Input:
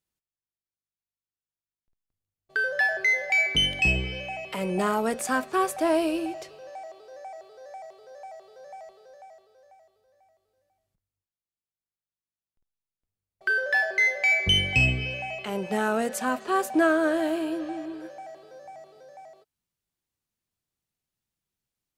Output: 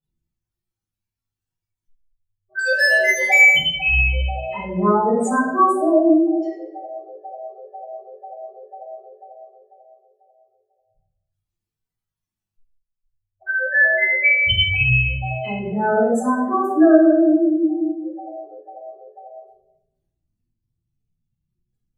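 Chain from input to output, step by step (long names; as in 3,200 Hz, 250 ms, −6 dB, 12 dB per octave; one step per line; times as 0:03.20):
expanding power law on the bin magnitudes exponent 3.2
0:02.59–0:03.49: leveller curve on the samples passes 2
rectangular room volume 270 cubic metres, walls mixed, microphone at 5.8 metres
level −6.5 dB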